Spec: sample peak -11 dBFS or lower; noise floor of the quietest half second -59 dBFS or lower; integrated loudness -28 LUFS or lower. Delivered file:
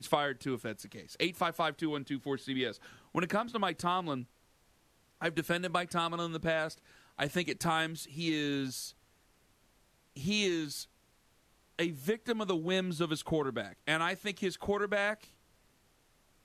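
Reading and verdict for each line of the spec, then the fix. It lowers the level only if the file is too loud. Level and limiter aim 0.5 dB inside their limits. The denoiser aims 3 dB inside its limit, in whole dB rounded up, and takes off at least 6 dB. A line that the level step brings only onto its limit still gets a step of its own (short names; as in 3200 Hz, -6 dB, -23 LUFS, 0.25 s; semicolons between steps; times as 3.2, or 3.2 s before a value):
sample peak -12.0 dBFS: OK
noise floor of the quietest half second -69 dBFS: OK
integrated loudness -34.0 LUFS: OK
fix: none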